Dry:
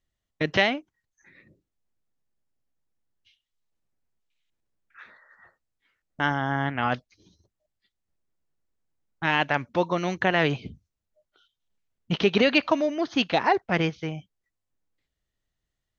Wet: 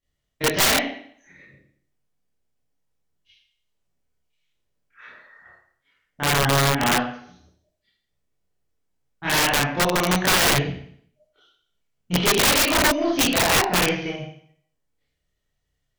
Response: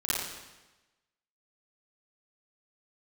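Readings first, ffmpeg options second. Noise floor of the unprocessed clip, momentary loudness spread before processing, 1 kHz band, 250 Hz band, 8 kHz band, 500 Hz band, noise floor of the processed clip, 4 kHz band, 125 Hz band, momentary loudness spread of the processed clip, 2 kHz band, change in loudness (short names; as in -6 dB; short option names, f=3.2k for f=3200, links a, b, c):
-84 dBFS, 12 LU, +4.0 dB, +2.5 dB, n/a, +1.5 dB, -77 dBFS, +9.5 dB, +5.0 dB, 13 LU, +4.5 dB, +5.5 dB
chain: -filter_complex "[1:a]atrim=start_sample=2205,asetrate=79380,aresample=44100[a];[0:a][a]afir=irnorm=-1:irlink=0,aeval=exprs='0.631*(cos(1*acos(clip(val(0)/0.631,-1,1)))-cos(1*PI/2))+0.282*(cos(2*acos(clip(val(0)/0.631,-1,1)))-cos(2*PI/2))+0.00794*(cos(3*acos(clip(val(0)/0.631,-1,1)))-cos(3*PI/2))+0.0355*(cos(8*acos(clip(val(0)/0.631,-1,1)))-cos(8*PI/2))':c=same,aeval=exprs='(mod(5.31*val(0)+1,2)-1)/5.31':c=same,volume=2dB"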